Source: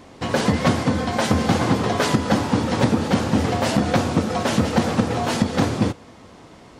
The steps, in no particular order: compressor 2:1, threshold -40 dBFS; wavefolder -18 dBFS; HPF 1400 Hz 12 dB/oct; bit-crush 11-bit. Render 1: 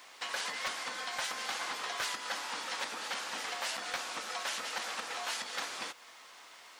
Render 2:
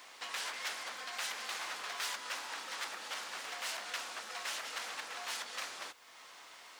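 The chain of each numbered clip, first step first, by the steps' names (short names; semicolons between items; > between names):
HPF > wavefolder > compressor > bit-crush; wavefolder > compressor > HPF > bit-crush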